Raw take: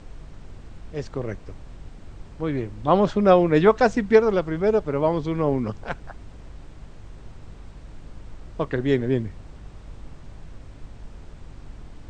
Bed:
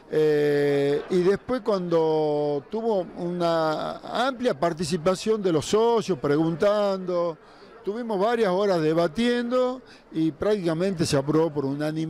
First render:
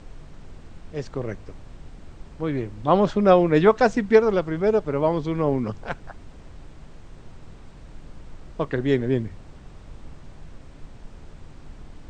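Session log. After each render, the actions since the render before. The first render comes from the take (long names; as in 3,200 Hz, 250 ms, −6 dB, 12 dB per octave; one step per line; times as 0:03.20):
hum removal 50 Hz, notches 2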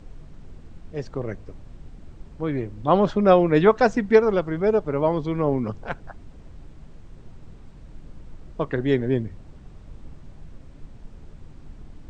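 broadband denoise 6 dB, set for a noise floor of −45 dBFS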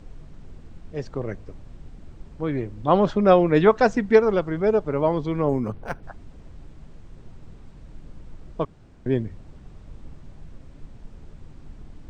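0:05.49–0:06.03: linearly interpolated sample-rate reduction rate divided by 6×
0:08.65–0:09.06: fill with room tone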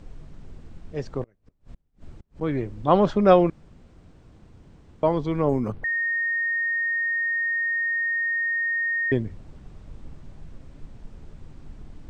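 0:01.23–0:02.41: gate with flip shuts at −32 dBFS, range −32 dB
0:03.50–0:05.03: fill with room tone
0:05.84–0:09.12: beep over 1,850 Hz −22 dBFS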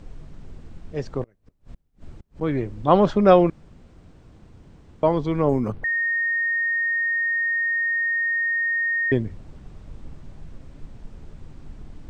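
level +2 dB
brickwall limiter −2 dBFS, peak gain reduction 1 dB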